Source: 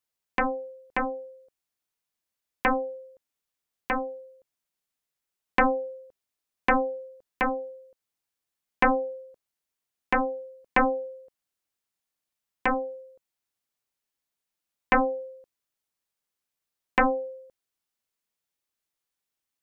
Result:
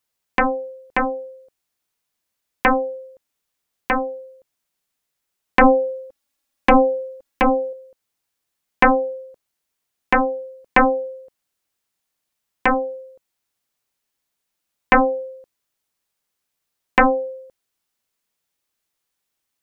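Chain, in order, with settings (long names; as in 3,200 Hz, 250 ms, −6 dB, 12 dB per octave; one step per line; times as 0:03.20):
0:05.61–0:07.73: comb filter 3.6 ms, depth 74%
level +7.5 dB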